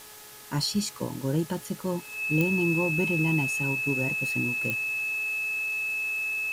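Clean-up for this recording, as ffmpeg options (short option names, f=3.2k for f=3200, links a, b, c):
-af "adeclick=t=4,bandreject=f=423.2:t=h:w=4,bandreject=f=846.4:t=h:w=4,bandreject=f=1.2696k:t=h:w=4,bandreject=f=1.6928k:t=h:w=4,bandreject=f=2.6k:w=30,afftdn=nr=29:nf=-45"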